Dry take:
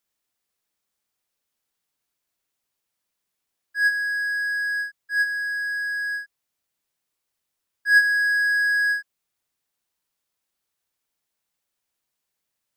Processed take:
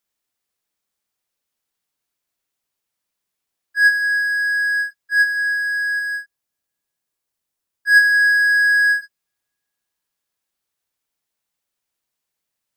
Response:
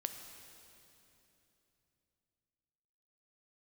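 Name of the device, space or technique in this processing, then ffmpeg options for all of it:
keyed gated reverb: -filter_complex "[0:a]asettb=1/sr,asplit=3[s0][s1][s2];[s0]atrim=end=5.994[s3];[s1]atrim=start=5.99:end=8.01,asetpts=PTS-STARTPTS,afade=t=in:d=0.004:c=qsin,afade=t=out:st=2.016:d=0.004:c=qsin,equalizer=f=2300:w=0.48:g=-3[s4];[s2]atrim=start=8.006[s5];[s3][s4]acrossfade=d=0.004:c1=hsin:c2=qsin[s6];[s6][s5]acrossfade=d=0.004:c1=qsin:c2=hsin,asplit=3[s7][s8][s9];[1:a]atrim=start_sample=2205[s10];[s8][s10]afir=irnorm=-1:irlink=0[s11];[s9]apad=whole_len=562837[s12];[s11][s12]sidechaingate=range=0.00447:threshold=0.0224:ratio=16:detection=peak,volume=1.33[s13];[s7][s13]amix=inputs=2:normalize=0"

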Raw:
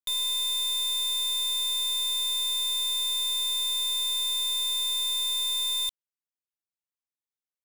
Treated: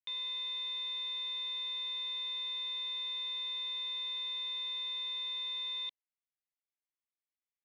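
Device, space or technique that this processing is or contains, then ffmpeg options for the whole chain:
phone earpiece: -af "highpass=370,equalizer=f=400:t=q:w=4:g=-8,equalizer=f=580:t=q:w=4:g=-5,equalizer=f=830:t=q:w=4:g=-5,equalizer=f=1400:t=q:w=4:g=-8,equalizer=f=2100:t=q:w=4:g=5,lowpass=f=3200:w=0.5412,lowpass=f=3200:w=1.3066,volume=0.631"

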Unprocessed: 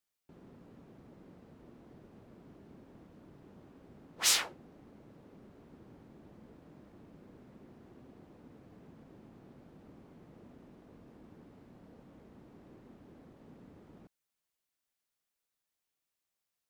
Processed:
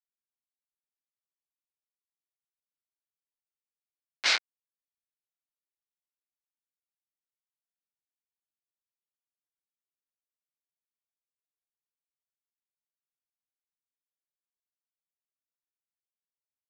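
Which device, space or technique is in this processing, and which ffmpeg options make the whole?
hand-held game console: -af "acrusher=bits=3:mix=0:aa=0.000001,highpass=470,equalizer=f=1500:t=q:w=4:g=7,equalizer=f=2200:t=q:w=4:g=9,equalizer=f=4300:t=q:w=4:g=4,lowpass=f=5100:w=0.5412,lowpass=f=5100:w=1.3066,volume=1.26"

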